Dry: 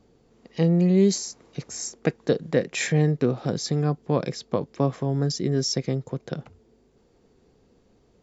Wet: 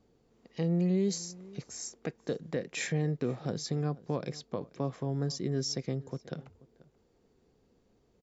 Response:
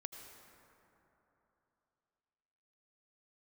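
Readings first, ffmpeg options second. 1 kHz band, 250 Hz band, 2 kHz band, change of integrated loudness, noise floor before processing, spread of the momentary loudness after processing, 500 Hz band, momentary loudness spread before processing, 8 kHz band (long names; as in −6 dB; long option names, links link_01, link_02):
−9.5 dB, −9.0 dB, −9.0 dB, −9.5 dB, −62 dBFS, 12 LU, −10.0 dB, 13 LU, can't be measured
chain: -filter_complex "[0:a]alimiter=limit=-12.5dB:level=0:latency=1:release=102,asplit=2[link_01][link_02];[link_02]adelay=484,volume=-21dB,highshelf=frequency=4000:gain=-10.9[link_03];[link_01][link_03]amix=inputs=2:normalize=0,volume=-8dB"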